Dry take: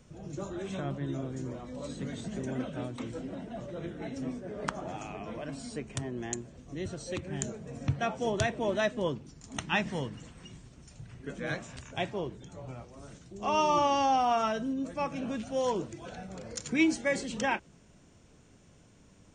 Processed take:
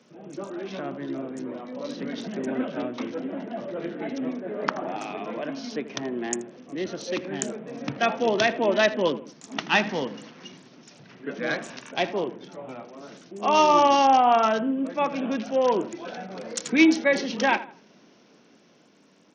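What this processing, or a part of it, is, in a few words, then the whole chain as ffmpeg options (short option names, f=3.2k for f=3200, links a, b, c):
Bluetooth headset: -filter_complex "[0:a]asettb=1/sr,asplit=3[a][b][c];[a]atrim=end=8.004[d];[b]atrim=start=8:end=9.14,asetpts=PTS-STARTPTS,afade=t=in:d=0.004:c=qsin,afade=t=out:st=1.136:d=0.004:c=qsin,equalizer=f=2.8k:t=o:w=0.92:g=3.5[e];[c]atrim=start=9.136[f];[d][e]acrossfade=d=0.004:c1=hsin:c2=qsin[g];[g][f]acrossfade=d=0.004:c1=qsin:c2=hsin,highpass=f=210:w=0.5412,highpass=f=210:w=1.3066,asplit=2[h][i];[i]adelay=81,lowpass=f=2.1k:p=1,volume=-14dB,asplit=2[j][k];[k]adelay=81,lowpass=f=2.1k:p=1,volume=0.35,asplit=2[l][m];[m]adelay=81,lowpass=f=2.1k:p=1,volume=0.35[n];[h][j][l][n]amix=inputs=4:normalize=0,dynaudnorm=f=310:g=11:m=4dB,aresample=16000,aresample=44100,volume=4dB" -ar 48000 -c:a sbc -b:a 64k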